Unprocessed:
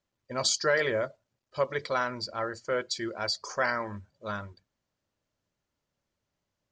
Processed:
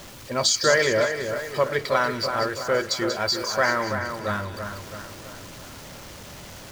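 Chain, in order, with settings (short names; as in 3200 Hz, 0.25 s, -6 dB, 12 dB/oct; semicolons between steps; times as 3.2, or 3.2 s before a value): zero-crossing step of -41 dBFS; split-band echo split 2000 Hz, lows 0.33 s, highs 0.187 s, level -7 dB; gain +5.5 dB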